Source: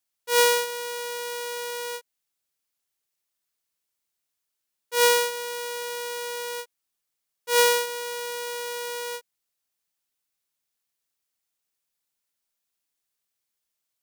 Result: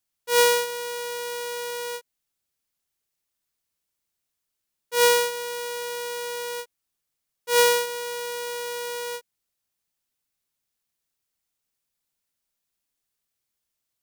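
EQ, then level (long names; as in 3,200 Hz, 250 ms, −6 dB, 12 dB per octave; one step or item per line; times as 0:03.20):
low-shelf EQ 240 Hz +8 dB
0.0 dB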